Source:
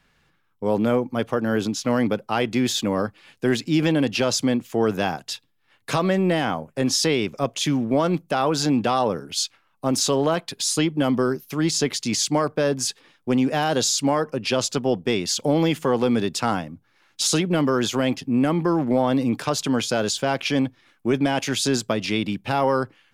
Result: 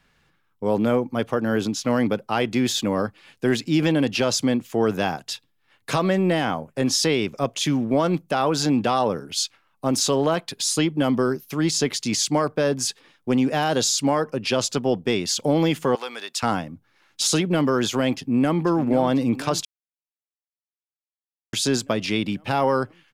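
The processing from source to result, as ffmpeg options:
ffmpeg -i in.wav -filter_complex "[0:a]asettb=1/sr,asplit=3[link_01][link_02][link_03];[link_01]atrim=end=15.954[link_04];[link_02]atrim=start=15.95:end=16.43,asetpts=PTS-STARTPTS,afade=type=in:duration=0.004:curve=qsin,afade=type=out:start_time=0.476:duration=0.004:curve=qsin,highpass=1000[link_05];[link_03]atrim=start=16.426[link_06];[link_04][link_05]acrossfade=duration=0.004:curve1=hsin:curve2=qsin[link_07];[link_07][link_06]acrossfade=duration=0.004:curve1=qsin:curve2=hsin,asplit=2[link_08][link_09];[link_09]afade=type=in:start_time=18.17:duration=0.01,afade=type=out:start_time=18.62:duration=0.01,aecho=0:1:490|980|1470|1960|2450|2940|3430|3920|4410|4900:0.251189|0.175832|0.123082|0.0861577|0.0603104|0.0422173|0.0295521|0.0206865|0.0144805|0.0101364[link_10];[link_08][link_10]amix=inputs=2:normalize=0,asplit=3[link_11][link_12][link_13];[link_11]atrim=end=19.65,asetpts=PTS-STARTPTS,afade=type=out:start_time=19.646:duration=0.004:curve=hsin[link_14];[link_12]atrim=start=19.65:end=21.53,asetpts=PTS-STARTPTS,volume=0[link_15];[link_13]atrim=start=21.53,asetpts=PTS-STARTPTS,afade=type=in:duration=0.004:curve=hsin[link_16];[link_14][link_15][link_16]concat=n=3:v=0:a=1" out.wav

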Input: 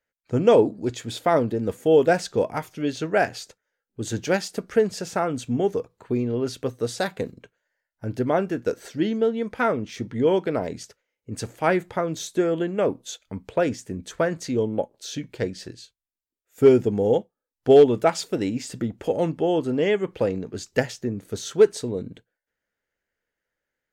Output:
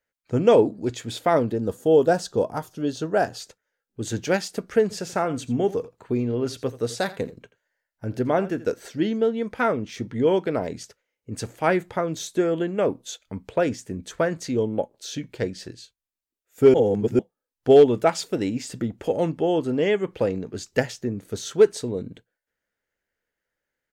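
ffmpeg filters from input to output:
ffmpeg -i in.wav -filter_complex "[0:a]asettb=1/sr,asplit=3[link_01][link_02][link_03];[link_01]atrim=end=1.584[link_04];[link_02]atrim=start=1.58:end=3.4,asetpts=PTS-STARTPTS,afade=type=in:duration=0.004:curve=qsin,afade=type=out:start_time=1.816:duration=0.004:curve=qsin,equalizer=frequency=2200:width=2.5:gain=-14.5[link_05];[link_03]atrim=start=3.396[link_06];[link_04][link_05]acrossfade=duration=0.004:curve1=hsin:curve2=qsin[link_07];[link_07][link_06]acrossfade=duration=0.004:curve1=qsin:curve2=hsin,asplit=3[link_08][link_09][link_10];[link_08]afade=type=out:start_time=4.9:duration=0.02[link_11];[link_09]aecho=1:1:83:0.141,afade=type=in:start_time=4.9:duration=0.02,afade=type=out:start_time=8.69:duration=0.02[link_12];[link_10]afade=type=in:start_time=8.69:duration=0.02[link_13];[link_11][link_12][link_13]amix=inputs=3:normalize=0,asplit=3[link_14][link_15][link_16];[link_14]atrim=end=16.742[link_17];[link_15]atrim=start=16.738:end=17.192,asetpts=PTS-STARTPTS,areverse[link_18];[link_16]atrim=start=17.188[link_19];[link_17][link_18]acrossfade=duration=0.004:curve1=hsin:curve2=hsin[link_20];[link_20][link_19]acrossfade=duration=0.004:curve1=hsin:curve2=hsin" out.wav

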